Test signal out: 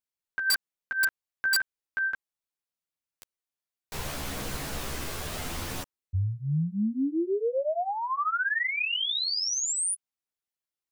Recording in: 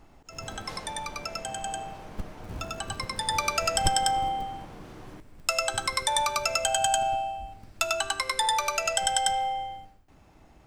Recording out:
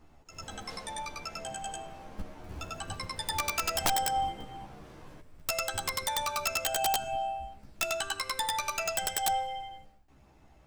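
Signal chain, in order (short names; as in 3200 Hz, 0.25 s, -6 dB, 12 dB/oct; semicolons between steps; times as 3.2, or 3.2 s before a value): chorus voices 2, 0.34 Hz, delay 13 ms, depth 2.1 ms; wrapped overs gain 18 dB; gain -1.5 dB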